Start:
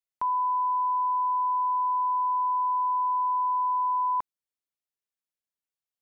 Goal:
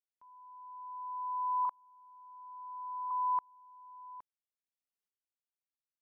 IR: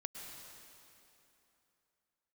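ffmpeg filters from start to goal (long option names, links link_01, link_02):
-filter_complex "[0:a]asettb=1/sr,asplit=3[link_01][link_02][link_03];[link_01]atrim=end=1.654[link_04];[link_02]atrim=start=1.65:end=3.11,asetpts=PTS-STARTPTS,afade=type=in:duration=0.004:curve=qsin,afade=type=out:start_time=1.456:duration=0.004:curve=qsin,lowpass=1100[link_05];[link_03]atrim=start=3.106[link_06];[link_04][link_05]acrossfade=duration=0.004:curve1=hsin:curve2=qsin[link_07];[link_07][link_06]acrossfade=duration=0.004:curve1=qsin:curve2=hsin,aeval=exprs='val(0)*pow(10,-34*if(lt(mod(-0.59*n/s,1),2*abs(-0.59)/1000),1-mod(-0.59*n/s,1)/(2*abs(-0.59)/1000),(mod(-0.59*n/s,1)-2*abs(-0.59)/1000)/(1-2*abs(-0.59)/1000))/20)':channel_layout=same,volume=-3dB"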